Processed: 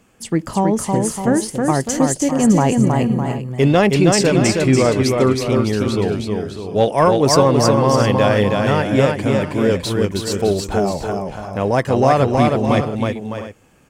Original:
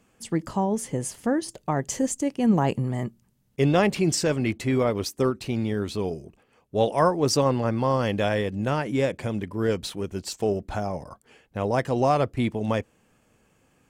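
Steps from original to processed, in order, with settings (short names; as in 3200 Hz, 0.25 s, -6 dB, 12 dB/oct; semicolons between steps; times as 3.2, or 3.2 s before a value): 3.94–6.15 LPF 11000 Hz 12 dB/oct; soft clip -9 dBFS, distortion -27 dB; tapped delay 0.319/0.608/0.669/0.71 s -3.5/-9.5/-16/-15.5 dB; gain +7.5 dB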